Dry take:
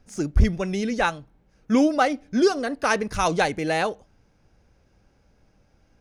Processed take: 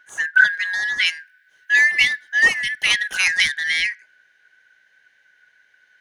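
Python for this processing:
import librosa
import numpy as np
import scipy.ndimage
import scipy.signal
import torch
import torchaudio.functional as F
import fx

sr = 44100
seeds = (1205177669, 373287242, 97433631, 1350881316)

y = fx.band_shuffle(x, sr, order='4123')
y = fx.high_shelf(y, sr, hz=7000.0, db=8.5, at=(1.06, 3.54))
y = y * librosa.db_to_amplitude(2.5)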